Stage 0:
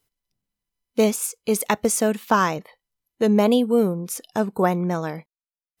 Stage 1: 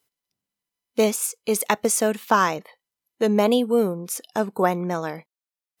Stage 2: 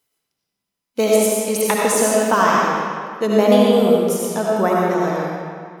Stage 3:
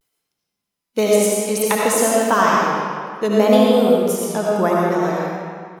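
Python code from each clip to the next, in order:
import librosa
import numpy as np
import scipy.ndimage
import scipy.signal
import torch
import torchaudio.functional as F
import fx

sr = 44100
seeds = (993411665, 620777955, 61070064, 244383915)

y1 = fx.highpass(x, sr, hz=280.0, slope=6)
y1 = y1 * 10.0 ** (1.0 / 20.0)
y2 = fx.rev_freeverb(y1, sr, rt60_s=2.1, hf_ratio=0.8, predelay_ms=40, drr_db=-4.5)
y3 = fx.vibrato(y2, sr, rate_hz=0.59, depth_cents=67.0)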